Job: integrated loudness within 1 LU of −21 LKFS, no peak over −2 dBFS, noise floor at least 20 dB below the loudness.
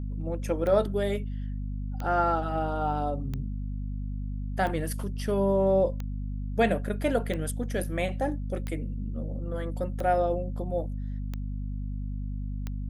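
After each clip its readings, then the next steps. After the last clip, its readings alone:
number of clicks 10; mains hum 50 Hz; hum harmonics up to 250 Hz; level of the hum −30 dBFS; integrated loudness −30.0 LKFS; sample peak −10.5 dBFS; target loudness −21.0 LKFS
→ click removal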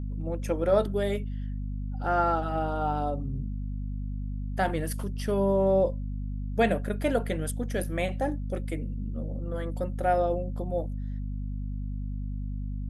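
number of clicks 0; mains hum 50 Hz; hum harmonics up to 250 Hz; level of the hum −30 dBFS
→ hum removal 50 Hz, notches 5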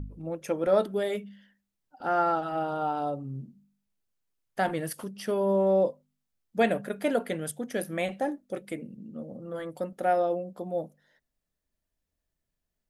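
mains hum none found; integrated loudness −29.5 LKFS; sample peak −11.5 dBFS; target loudness −21.0 LKFS
→ level +8.5 dB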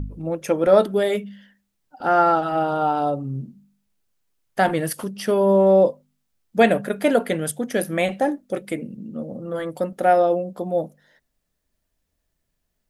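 integrated loudness −21.0 LKFS; sample peak −3.0 dBFS; background noise floor −76 dBFS

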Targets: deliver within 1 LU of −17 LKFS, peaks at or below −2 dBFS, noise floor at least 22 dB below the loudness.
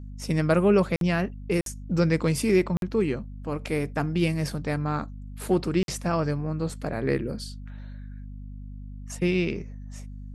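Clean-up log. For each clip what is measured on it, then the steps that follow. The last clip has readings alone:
number of dropouts 4; longest dropout 52 ms; mains hum 50 Hz; hum harmonics up to 250 Hz; level of the hum −37 dBFS; integrated loudness −26.5 LKFS; sample peak −9.0 dBFS; target loudness −17.0 LKFS
→ repair the gap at 0:00.96/0:01.61/0:02.77/0:05.83, 52 ms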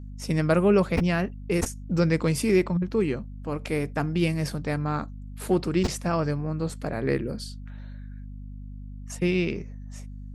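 number of dropouts 0; mains hum 50 Hz; hum harmonics up to 250 Hz; level of the hum −37 dBFS
→ mains-hum notches 50/100/150/200/250 Hz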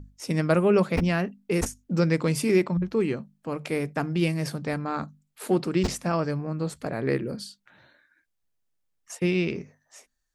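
mains hum none found; integrated loudness −26.5 LKFS; sample peak −8.0 dBFS; target loudness −17.0 LKFS
→ level +9.5 dB
brickwall limiter −2 dBFS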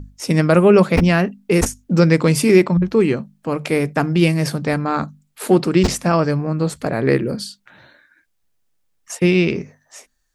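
integrated loudness −17.0 LKFS; sample peak −2.0 dBFS; background noise floor −67 dBFS

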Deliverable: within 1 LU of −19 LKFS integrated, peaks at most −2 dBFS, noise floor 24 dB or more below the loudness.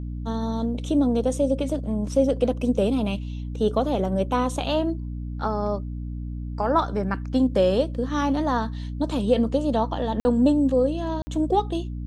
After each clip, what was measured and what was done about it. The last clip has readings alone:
number of dropouts 2; longest dropout 50 ms; mains hum 60 Hz; hum harmonics up to 300 Hz; level of the hum −29 dBFS; integrated loudness −24.5 LKFS; sample peak −7.5 dBFS; target loudness −19.0 LKFS
→ repair the gap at 0:10.20/0:11.22, 50 ms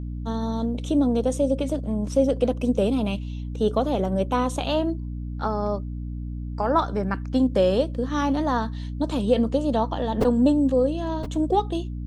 number of dropouts 0; mains hum 60 Hz; hum harmonics up to 300 Hz; level of the hum −29 dBFS
→ hum removal 60 Hz, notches 5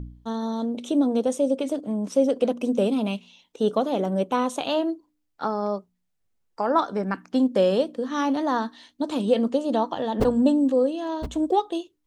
mains hum none found; integrated loudness −24.5 LKFS; sample peak −8.0 dBFS; target loudness −19.0 LKFS
→ level +5.5 dB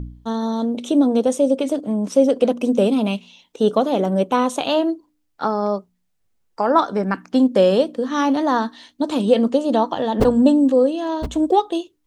integrated loudness −19.0 LKFS; sample peak −2.5 dBFS; background noise floor −69 dBFS

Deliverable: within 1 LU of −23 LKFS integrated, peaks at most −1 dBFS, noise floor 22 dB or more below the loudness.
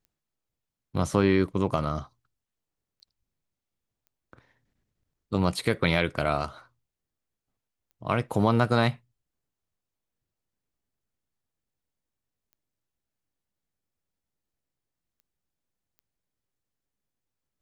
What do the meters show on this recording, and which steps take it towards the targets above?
number of clicks 7; integrated loudness −26.5 LKFS; sample peak −7.0 dBFS; target loudness −23.0 LKFS
→ click removal
level +3.5 dB

